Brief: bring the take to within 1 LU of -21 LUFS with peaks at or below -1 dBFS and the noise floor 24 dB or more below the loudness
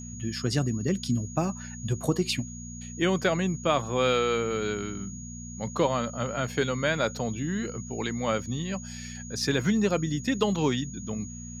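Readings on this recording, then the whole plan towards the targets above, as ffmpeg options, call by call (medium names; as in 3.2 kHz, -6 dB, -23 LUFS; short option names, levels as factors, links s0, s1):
hum 60 Hz; highest harmonic 240 Hz; hum level -39 dBFS; steady tone 6.7 kHz; tone level -43 dBFS; loudness -28.5 LUFS; peak level -11.0 dBFS; loudness target -21.0 LUFS
-> -af "bandreject=f=60:t=h:w=4,bandreject=f=120:t=h:w=4,bandreject=f=180:t=h:w=4,bandreject=f=240:t=h:w=4"
-af "bandreject=f=6700:w=30"
-af "volume=2.37"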